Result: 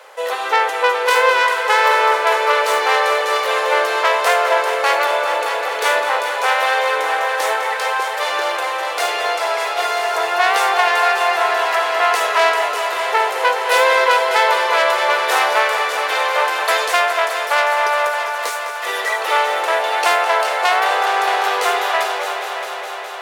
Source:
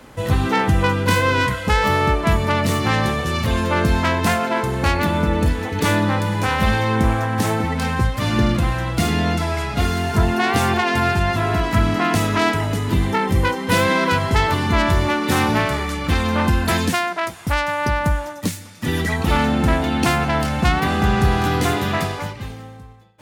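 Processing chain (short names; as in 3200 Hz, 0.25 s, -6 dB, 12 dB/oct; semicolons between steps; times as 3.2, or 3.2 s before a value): steep high-pass 460 Hz 48 dB/oct; high shelf 4600 Hz -5 dB; multi-head echo 0.207 s, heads all three, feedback 70%, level -13 dB; gain +5 dB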